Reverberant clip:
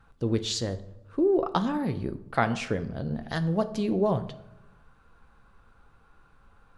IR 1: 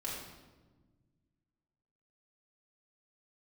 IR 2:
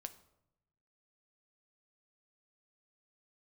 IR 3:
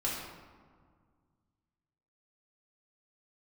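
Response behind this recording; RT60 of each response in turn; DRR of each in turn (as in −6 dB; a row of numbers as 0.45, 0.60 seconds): 2; 1.3, 0.85, 1.8 seconds; −5.5, 9.0, −6.0 decibels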